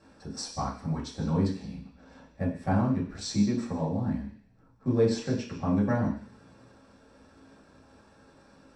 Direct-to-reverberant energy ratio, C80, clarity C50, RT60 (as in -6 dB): -7.0 dB, 10.0 dB, 7.0 dB, 0.50 s